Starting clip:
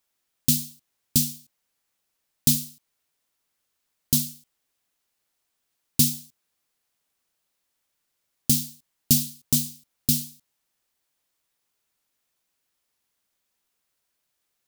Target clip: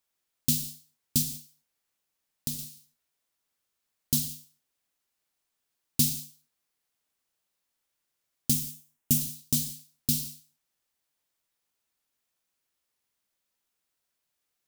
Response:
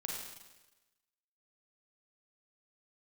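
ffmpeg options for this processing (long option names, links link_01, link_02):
-filter_complex "[0:a]asettb=1/sr,asplit=3[link_01][link_02][link_03];[link_01]atrim=end=1.224[link_04];[link_02]atrim=start=1.22:end=2.59,asetpts=PTS-STARTPTS,afade=type=in:duration=0.004:curve=qsin,afade=type=out:start_time=1.366:duration=0.004:curve=qsin,acompressor=threshold=-29dB:ratio=2.5[link_05];[link_03]atrim=start=2.586[link_06];[link_04][link_05]acrossfade=duration=0.004:curve1=hsin:curve2=qsin[link_07];[link_07][link_06]acrossfade=duration=0.004:curve1=qsin:curve2=hsin,asettb=1/sr,asplit=3[link_08][link_09][link_10];[link_08]atrim=end=8.534[link_11];[link_09]atrim=start=8.53:end=9.21,asetpts=PTS-STARTPTS,afade=type=in:duration=0.004:curve=qsin,afade=type=out:start_time=0.676:duration=0.004:curve=qsin,equalizer=frequency=4400:width=2.2:gain=-9.5[link_12];[link_10]atrim=start=9.206[link_13];[link_11][link_12]acrossfade=duration=0.004:curve1=hsin:curve2=qsin[link_14];[link_14][link_13]acrossfade=duration=0.004:curve1=qsin:curve2=hsin,asplit=2[link_15][link_16];[1:a]atrim=start_sample=2205,afade=type=out:start_time=0.24:duration=0.01,atrim=end_sample=11025[link_17];[link_16][link_17]afir=irnorm=-1:irlink=0,volume=-3.5dB[link_18];[link_15][link_18]amix=inputs=2:normalize=0,volume=-8dB"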